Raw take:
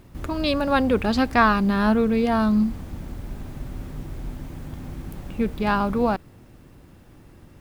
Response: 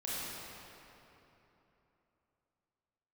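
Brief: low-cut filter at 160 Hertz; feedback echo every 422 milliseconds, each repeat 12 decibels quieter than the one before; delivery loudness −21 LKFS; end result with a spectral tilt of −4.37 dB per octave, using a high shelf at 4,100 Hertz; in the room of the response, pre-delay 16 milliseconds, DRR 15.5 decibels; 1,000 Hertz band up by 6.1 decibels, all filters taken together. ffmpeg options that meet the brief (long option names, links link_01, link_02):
-filter_complex "[0:a]highpass=160,equalizer=frequency=1000:width_type=o:gain=8,highshelf=frequency=4100:gain=-7.5,aecho=1:1:422|844|1266:0.251|0.0628|0.0157,asplit=2[link_01][link_02];[1:a]atrim=start_sample=2205,adelay=16[link_03];[link_02][link_03]afir=irnorm=-1:irlink=0,volume=-19.5dB[link_04];[link_01][link_04]amix=inputs=2:normalize=0,volume=-1.5dB"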